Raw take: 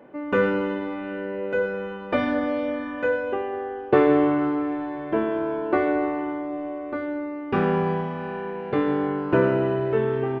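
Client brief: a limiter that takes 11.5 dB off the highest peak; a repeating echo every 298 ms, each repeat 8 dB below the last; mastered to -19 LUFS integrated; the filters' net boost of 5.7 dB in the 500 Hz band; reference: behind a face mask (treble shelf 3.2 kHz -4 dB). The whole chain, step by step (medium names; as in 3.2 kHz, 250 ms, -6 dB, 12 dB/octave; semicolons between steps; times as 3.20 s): peaking EQ 500 Hz +7 dB; peak limiter -11.5 dBFS; treble shelf 3.2 kHz -4 dB; feedback delay 298 ms, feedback 40%, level -8 dB; trim +3.5 dB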